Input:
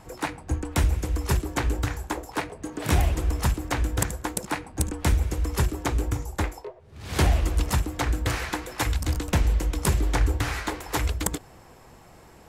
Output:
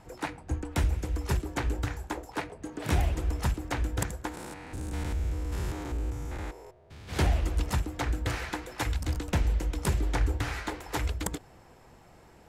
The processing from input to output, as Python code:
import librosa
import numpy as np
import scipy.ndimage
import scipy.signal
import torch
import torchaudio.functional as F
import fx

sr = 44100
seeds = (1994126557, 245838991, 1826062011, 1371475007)

y = fx.spec_steps(x, sr, hold_ms=200, at=(4.3, 7.07), fade=0.02)
y = fx.high_shelf(y, sr, hz=6900.0, db=-6.0)
y = fx.notch(y, sr, hz=1100.0, q=19.0)
y = y * 10.0 ** (-4.5 / 20.0)